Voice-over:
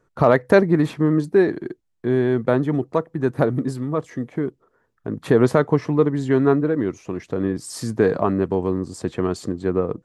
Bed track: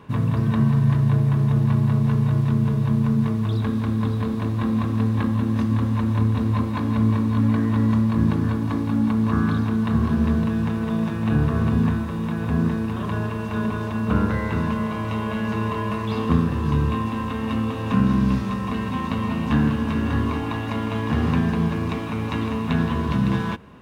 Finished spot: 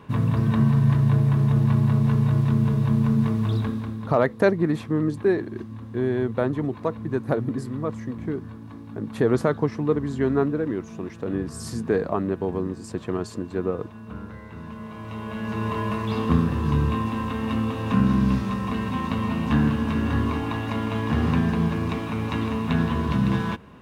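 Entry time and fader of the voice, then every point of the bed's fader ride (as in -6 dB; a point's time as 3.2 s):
3.90 s, -5.0 dB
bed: 3.56 s -0.5 dB
4.27 s -16.5 dB
14.5 s -16.5 dB
15.76 s -1 dB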